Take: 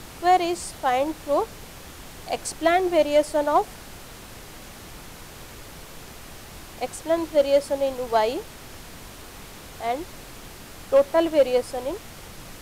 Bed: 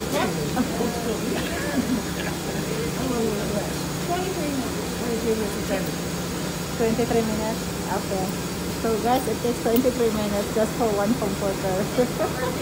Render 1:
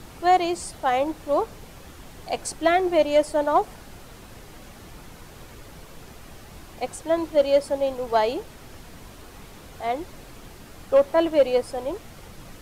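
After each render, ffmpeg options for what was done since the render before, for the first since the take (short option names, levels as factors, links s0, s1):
-af "afftdn=nr=6:nf=-43"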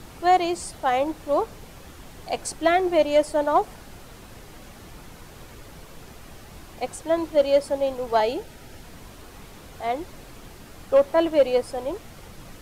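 -filter_complex "[0:a]asettb=1/sr,asplit=3[s0][s1][s2];[s0]atrim=end=8.204[s3];[s1]atrim=start=8.2:end=8.82,asetpts=PTS-STARTPTS,afade=t=in:d=0.004:c=qsin,afade=t=out:st=0.616:d=0.004:c=qsin,asuperstop=centerf=1100:order=12:qfactor=5.3[s4];[s2]atrim=start=8.816[s5];[s3][s4]acrossfade=d=0.004:c1=hsin:c2=qsin[s6];[s6][s5]acrossfade=d=0.004:c1=qsin:c2=hsin"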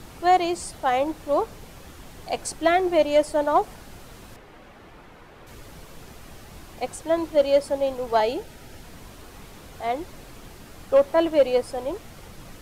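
-filter_complex "[0:a]asettb=1/sr,asplit=3[s0][s1][s2];[s0]atrim=end=4.364[s3];[s1]atrim=start=4.36:end=5.47,asetpts=PTS-STARTPTS,afade=t=in:d=0.004:c=qsin,afade=t=out:st=1.106:d=0.004:c=qsin,bass=f=250:g=-7,treble=f=4000:g=-15[s4];[s2]atrim=start=5.466[s5];[s3][s4]acrossfade=d=0.004:c1=hsin:c2=qsin[s6];[s6][s5]acrossfade=d=0.004:c1=qsin:c2=hsin"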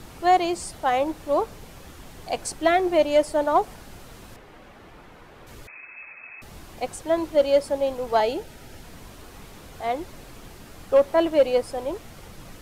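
-filter_complex "[0:a]asettb=1/sr,asplit=3[s0][s1][s2];[s0]atrim=end=5.674[s3];[s1]atrim=start=5.67:end=6.42,asetpts=PTS-STARTPTS,afade=t=in:d=0.004:c=qsin,afade=t=out:st=0.746:d=0.004:c=qsin,lowpass=f=2200:t=q:w=0.5098,lowpass=f=2200:t=q:w=0.6013,lowpass=f=2200:t=q:w=0.9,lowpass=f=2200:t=q:w=2.563,afreqshift=-2600[s4];[s2]atrim=start=6.416[s5];[s3][s4]acrossfade=d=0.004:c1=hsin:c2=qsin[s6];[s6][s5]acrossfade=d=0.004:c1=qsin:c2=hsin"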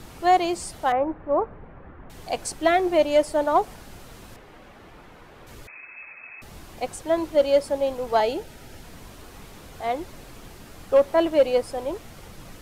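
-filter_complex "[0:a]asettb=1/sr,asplit=3[s0][s1][s2];[s0]atrim=end=0.924[s3];[s1]atrim=start=0.92:end=2.1,asetpts=PTS-STARTPTS,afade=t=in:d=0.004:c=qsin,afade=t=out:st=1.176:d=0.004:c=qsin,lowpass=f=1800:w=0.5412,lowpass=f=1800:w=1.3066[s4];[s2]atrim=start=2.096[s5];[s3][s4]acrossfade=d=0.004:c1=hsin:c2=qsin[s6];[s6][s5]acrossfade=d=0.004:c1=qsin:c2=hsin"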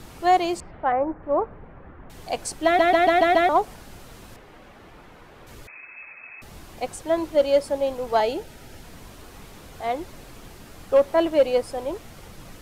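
-filter_complex "[0:a]asettb=1/sr,asplit=3[s0][s1][s2];[s0]atrim=end=0.604[s3];[s1]atrim=start=0.6:end=1.23,asetpts=PTS-STARTPTS,afade=t=in:d=0.004:c=qsin,afade=t=out:st=0.626:d=0.004:c=qsin,lowpass=f=2200:w=0.5412,lowpass=f=2200:w=1.3066[s4];[s2]atrim=start=1.226[s5];[s3][s4]acrossfade=d=0.004:c1=hsin:c2=qsin[s6];[s6][s5]acrossfade=d=0.004:c1=qsin:c2=hsin,asplit=7[s7][s8][s9][s10][s11][s12][s13];[s7]atrim=end=2.792[s14];[s8]atrim=start=2.648:end=2.792[s15];[s9]atrim=start=2.648:end=2.792[s16];[s10]atrim=start=2.648:end=2.792[s17];[s11]atrim=start=2.648:end=2.792[s18];[s12]atrim=start=2.648:end=2.792[s19];[s13]atrim=start=3.488[s20];[s14][s15]acrossfade=d=0.004:c1=hsin:c2=hsin[s21];[s21][s16]acrossfade=d=0.004:c1=hsin:c2=hsin[s22];[s22][s17]acrossfade=d=0.004:c1=hsin:c2=hsin[s23];[s23][s18]acrossfade=d=0.004:c1=hsin:c2=hsin[s24];[s24][s19]acrossfade=d=0.004:c1=hsin:c2=hsin[s25];[s25][s20]acrossfade=d=0.004:c1=hsin:c2=hsin"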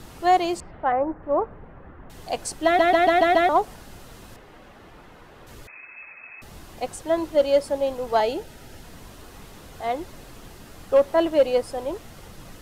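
-af "bandreject=f=2300:w=20"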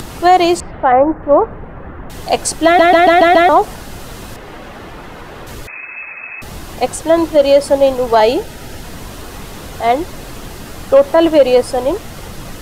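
-af "acompressor=mode=upward:threshold=0.0112:ratio=2.5,alimiter=level_in=4.73:limit=0.891:release=50:level=0:latency=1"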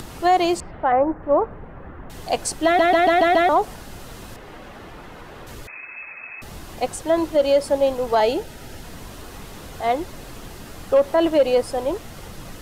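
-af "volume=0.398"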